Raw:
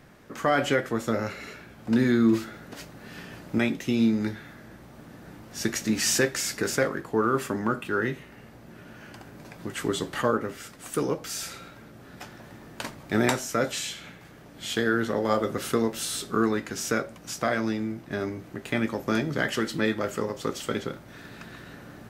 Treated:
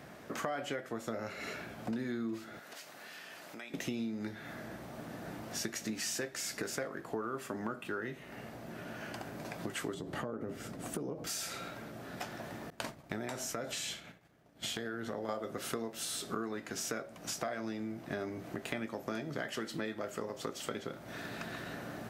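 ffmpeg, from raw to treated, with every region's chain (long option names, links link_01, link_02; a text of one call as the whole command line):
ffmpeg -i in.wav -filter_complex "[0:a]asettb=1/sr,asplit=3[link_01][link_02][link_03];[link_01]atrim=end=2.594[link_04];[link_02]atrim=start=2.59:end=3.74,asetpts=PTS-STARTPTS,afade=type=in:duration=0.004:curve=qsin,afade=type=out:start_time=1.146:duration=0.004:curve=qsin,highpass=frequency=1400:poles=1,acompressor=threshold=-48dB:ratio=4:attack=3.2:release=140:knee=1:detection=peak[link_05];[link_03]atrim=start=3.736[link_06];[link_04][link_05]acrossfade=duration=0.004:curve1=hsin:curve2=qsin[link_07];[link_07][link_06]acrossfade=duration=0.004:curve1=qsin:curve2=hsin,asettb=1/sr,asplit=3[link_08][link_09][link_10];[link_08]atrim=end=9.944[link_11];[link_09]atrim=start=9.94:end=11.27,asetpts=PTS-STARTPTS,afade=type=in:duration=0.004:curve=qsin,afade=type=out:start_time=1.326:duration=0.004:curve=qsin,tiltshelf=frequency=660:gain=8,acompressor=threshold=-27dB:ratio=6:attack=3.2:release=140:knee=1:detection=peak[link_12];[link_10]atrim=start=11.266[link_13];[link_11][link_12]acrossfade=duration=0.004:curve1=hsin:curve2=qsin[link_14];[link_14][link_13]acrossfade=duration=0.004:curve1=qsin:curve2=hsin,asettb=1/sr,asplit=3[link_15][link_16][link_17];[link_15]atrim=end=12.704[link_18];[link_16]atrim=start=12.7:end=15.29,asetpts=PTS-STARTPTS,afade=type=in:duration=0.004:curve=qsin,afade=type=out:start_time=2.586:duration=0.004:curve=qsin,agate=range=-33dB:threshold=-37dB:ratio=3:release=100:detection=peak,lowshelf=frequency=120:gain=7.5,acompressor=threshold=-30dB:ratio=3:attack=3.2:release=140:knee=1:detection=peak[link_19];[link_17]atrim=start=15.286[link_20];[link_18][link_19]acrossfade=duration=0.004:curve1=hsin:curve2=qsin[link_21];[link_21][link_20]acrossfade=duration=0.004:curve1=qsin:curve2=hsin,highpass=frequency=130:poles=1,equalizer=frequency=670:width_type=o:width=0.3:gain=6.5,acompressor=threshold=-38dB:ratio=6,volume=2dB" out.wav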